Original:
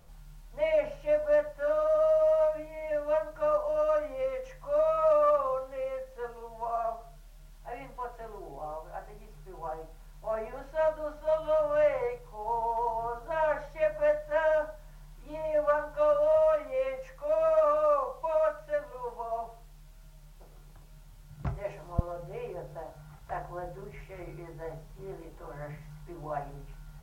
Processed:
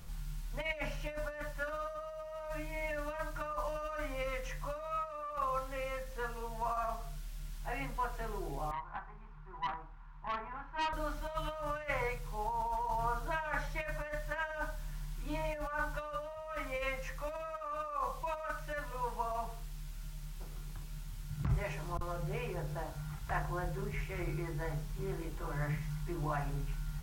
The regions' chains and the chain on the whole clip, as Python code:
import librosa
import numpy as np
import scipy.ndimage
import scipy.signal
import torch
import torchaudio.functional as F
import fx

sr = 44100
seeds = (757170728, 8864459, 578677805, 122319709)

y = fx.chain(x, sr, fx.lowpass(hz=1200.0, slope=12),
    fx.low_shelf_res(hz=750.0, db=-9.0, q=3.0),
    fx.tube_stage(drive_db=33.0, bias=0.4), at=(8.71, 10.93))
y = fx.dynamic_eq(y, sr, hz=420.0, q=1.0, threshold_db=-41.0, ratio=4.0, max_db=-7)
y = fx.over_compress(y, sr, threshold_db=-35.0, ratio=-1.0)
y = fx.peak_eq(y, sr, hz=600.0, db=-11.0, octaves=1.3)
y = y * 10.0 ** (5.0 / 20.0)